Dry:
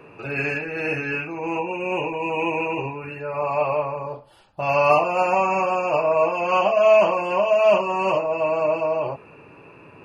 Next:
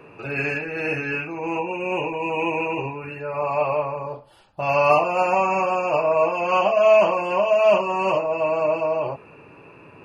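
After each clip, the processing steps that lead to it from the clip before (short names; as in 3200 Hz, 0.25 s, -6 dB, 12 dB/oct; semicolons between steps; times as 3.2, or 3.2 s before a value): nothing audible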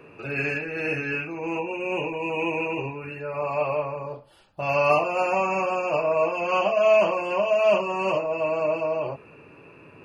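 bell 880 Hz -4.5 dB 0.76 oct; notches 60/120/180 Hz; gain -1.5 dB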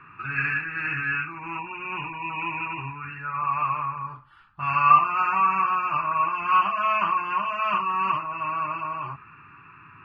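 EQ curve 130 Hz 0 dB, 360 Hz -12 dB, 520 Hz -30 dB, 1200 Hz +13 dB, 7400 Hz -21 dB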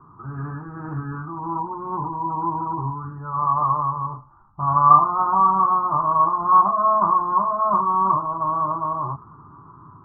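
steep low-pass 1100 Hz 48 dB/oct; AGC gain up to 4 dB; gain +5 dB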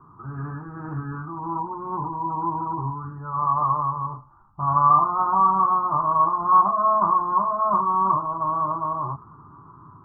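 maximiser +5 dB; gain -6.5 dB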